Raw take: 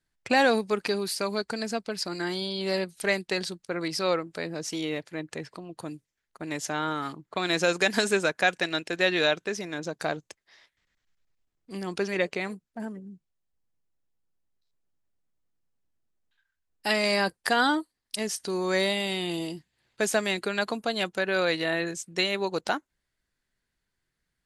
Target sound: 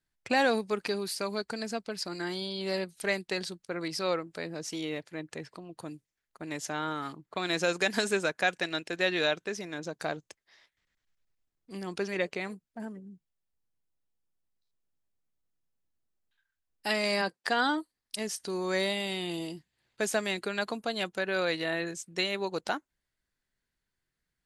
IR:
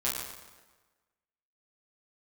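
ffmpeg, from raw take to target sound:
-filter_complex "[0:a]asplit=3[a][b][c];[a]afade=t=out:st=17.21:d=0.02[d];[b]highpass=170,lowpass=7.1k,afade=t=in:st=17.21:d=0.02,afade=t=out:st=17.76:d=0.02[e];[c]afade=t=in:st=17.76:d=0.02[f];[d][e][f]amix=inputs=3:normalize=0,volume=-4dB"

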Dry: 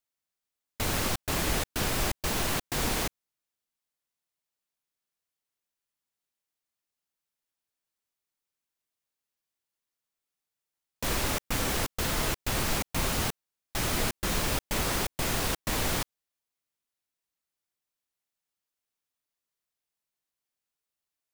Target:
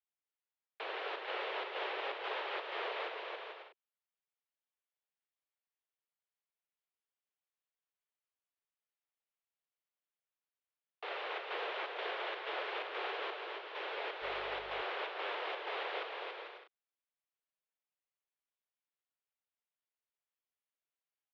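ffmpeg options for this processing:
-filter_complex "[0:a]aecho=1:1:280|448|548.8|609.3|645.6:0.631|0.398|0.251|0.158|0.1,highpass=f=190:t=q:w=0.5412,highpass=f=190:t=q:w=1.307,lowpass=f=3.3k:t=q:w=0.5176,lowpass=f=3.3k:t=q:w=0.7071,lowpass=f=3.3k:t=q:w=1.932,afreqshift=210,asettb=1/sr,asplit=3[a][b][c];[a]atrim=end=14.224[d];[b]atrim=start=14.22:end=14.82,asetpts=PTS-STARTPTS,afade=t=in:d=0.004:c=qsin,afade=t=out:st=0.596:d=0.004:c=qsin,aeval=exprs='val(0)+0.00224*(sin(2*PI*50*n/s)+sin(2*PI*2*50*n/s)/2+sin(2*PI*3*50*n/s)/3+sin(2*PI*4*50*n/s)/4+sin(2*PI*5*50*n/s)/5)':c=same[e];[c]atrim=start=14.816[f];[d][e]acrossfade=d=0.004:c1=hsin:c2=qsin[g];[g][f]acrossfade=d=0.004:c1=qsin:c2=hsin,volume=-8.5dB"

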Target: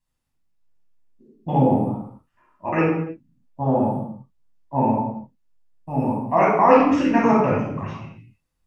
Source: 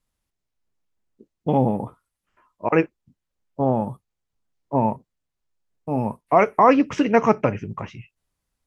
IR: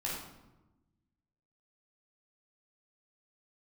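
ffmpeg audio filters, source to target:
-filter_complex "[1:a]atrim=start_sample=2205,afade=t=out:st=0.39:d=0.01,atrim=end_sample=17640[a];[0:a][a]afir=irnorm=-1:irlink=0,volume=-3dB"

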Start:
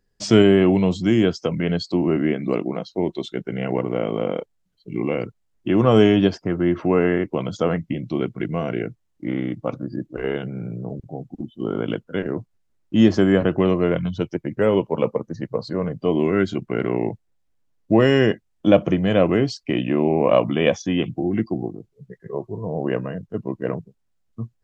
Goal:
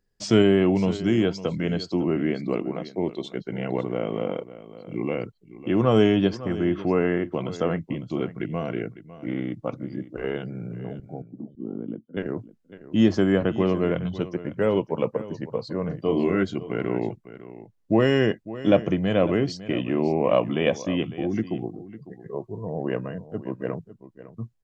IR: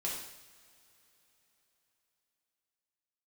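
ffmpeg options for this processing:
-filter_complex "[0:a]asettb=1/sr,asplit=3[a][b][c];[a]atrim=end=11.224[d];[b]atrim=start=11.22:end=12.17,asetpts=PTS-STARTPTS,afade=t=in:d=0.004:c=qsin,afade=t=out:st=0.946:d=0.004:c=qsin,bandpass=f=240:t=q:w=2:csg=0[e];[c]atrim=start=12.166[f];[d][e]acrossfade=d=0.004:c1=hsin:c2=qsin[g];[g][f]acrossfade=d=0.004:c1=qsin:c2=hsin,asettb=1/sr,asplit=3[h][i][j];[h]atrim=end=15.854[k];[i]atrim=start=15.85:end=16.43,asetpts=PTS-STARTPTS,afade=t=in:d=0.004:c=qsin,afade=t=out:st=0.576:d=0.004:c=qsin,asplit=2[l][m];[m]adelay=36,volume=-5.5dB[n];[l][n]amix=inputs=2:normalize=0,atrim=end_sample=25578[o];[j]atrim=start=16.426[p];[k][o]acrossfade=d=0.004:c1=hsin:c2=qsin[q];[q][p]acrossfade=d=0.004:c1=qsin:c2=hsin,aecho=1:1:553:0.168,volume=-4dB"

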